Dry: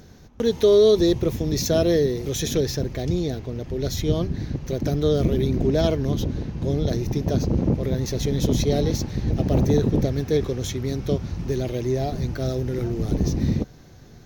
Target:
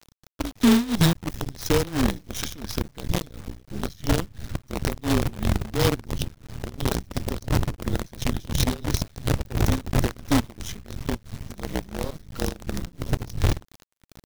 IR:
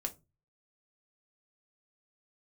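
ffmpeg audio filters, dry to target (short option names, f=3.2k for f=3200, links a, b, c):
-af "afreqshift=-180,acrusher=bits=4:dc=4:mix=0:aa=0.000001,tremolo=f=2.9:d=0.91"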